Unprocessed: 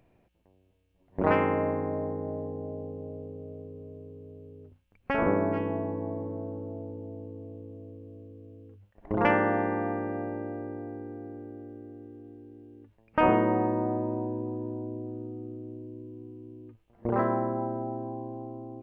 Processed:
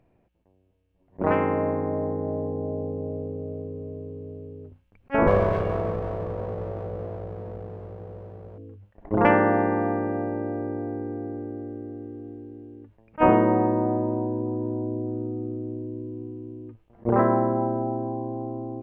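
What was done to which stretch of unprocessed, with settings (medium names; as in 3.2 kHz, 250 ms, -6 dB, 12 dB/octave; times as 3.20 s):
5.27–8.58 s: comb filter that takes the minimum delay 1.8 ms
whole clip: treble shelf 3 kHz -11.5 dB; gain riding within 4 dB 2 s; attacks held to a fixed rise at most 560 dB/s; trim +4.5 dB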